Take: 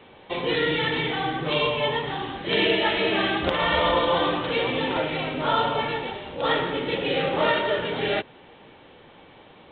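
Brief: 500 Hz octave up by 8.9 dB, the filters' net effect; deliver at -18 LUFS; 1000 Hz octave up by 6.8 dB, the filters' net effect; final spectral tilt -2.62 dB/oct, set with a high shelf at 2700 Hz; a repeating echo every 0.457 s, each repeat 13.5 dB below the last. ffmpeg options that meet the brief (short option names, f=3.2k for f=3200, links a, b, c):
-af "equalizer=f=500:t=o:g=9,equalizer=f=1k:t=o:g=6,highshelf=f=2.7k:g=-4,aecho=1:1:457|914:0.211|0.0444"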